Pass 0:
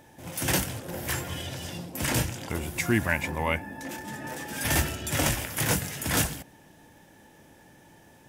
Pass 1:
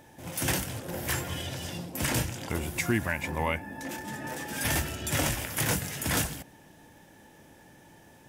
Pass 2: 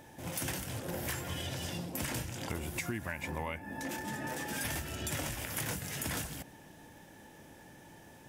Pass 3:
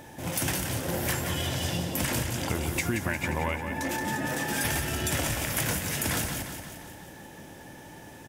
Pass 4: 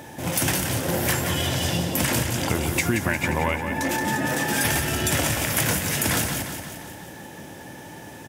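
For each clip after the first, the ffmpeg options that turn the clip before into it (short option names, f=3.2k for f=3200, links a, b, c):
-af "alimiter=limit=-16dB:level=0:latency=1:release=248"
-af "acompressor=threshold=-34dB:ratio=6"
-af "aecho=1:1:176|352|528|704|880|1056|1232:0.398|0.231|0.134|0.0777|0.0451|0.0261|0.0152,volume=7.5dB"
-af "highpass=72,volume=6dB"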